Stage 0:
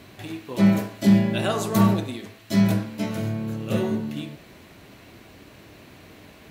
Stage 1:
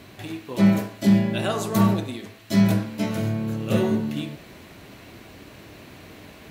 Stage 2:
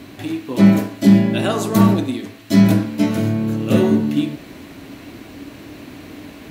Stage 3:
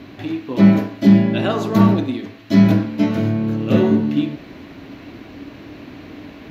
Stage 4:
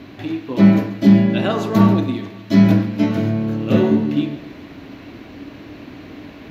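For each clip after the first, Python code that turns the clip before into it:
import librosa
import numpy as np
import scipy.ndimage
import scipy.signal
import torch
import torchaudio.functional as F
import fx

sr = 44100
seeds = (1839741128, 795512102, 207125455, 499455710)

y1 = fx.rider(x, sr, range_db=3, speed_s=2.0)
y2 = fx.peak_eq(y1, sr, hz=280.0, db=11.0, octaves=0.39)
y2 = F.gain(torch.from_numpy(y2), 4.5).numpy()
y3 = np.convolve(y2, np.full(5, 1.0 / 5))[:len(y2)]
y4 = fx.echo_feedback(y3, sr, ms=138, feedback_pct=58, wet_db=-17.0)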